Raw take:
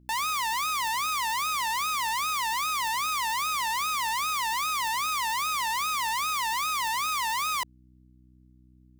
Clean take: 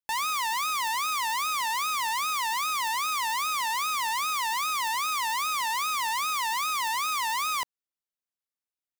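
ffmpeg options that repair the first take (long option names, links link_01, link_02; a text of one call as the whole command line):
ffmpeg -i in.wav -af "bandreject=frequency=62.5:width_type=h:width=4,bandreject=frequency=125:width_type=h:width=4,bandreject=frequency=187.5:width_type=h:width=4,bandreject=frequency=250:width_type=h:width=4,bandreject=frequency=312.5:width_type=h:width=4" out.wav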